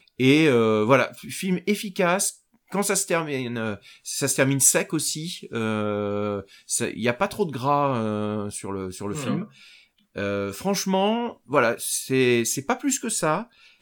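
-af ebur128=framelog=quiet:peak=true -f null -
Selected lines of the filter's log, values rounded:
Integrated loudness:
  I:         -23.6 LUFS
  Threshold: -33.9 LUFS
Loudness range:
  LRA:         4.8 LU
  Threshold: -44.5 LUFS
  LRA low:   -27.5 LUFS
  LRA high:  -22.7 LUFS
True peak:
  Peak:       -3.3 dBFS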